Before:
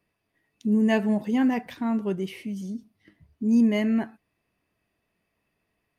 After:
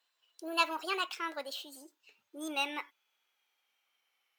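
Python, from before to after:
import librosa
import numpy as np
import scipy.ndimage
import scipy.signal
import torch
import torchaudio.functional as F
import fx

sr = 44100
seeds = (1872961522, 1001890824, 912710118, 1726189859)

y = fx.speed_glide(x, sr, from_pct=157, to_pct=116)
y = scipy.signal.sosfilt(scipy.signal.butter(2, 1200.0, 'highpass', fs=sr, output='sos'), y)
y = F.gain(torch.from_numpy(y), 1.5).numpy()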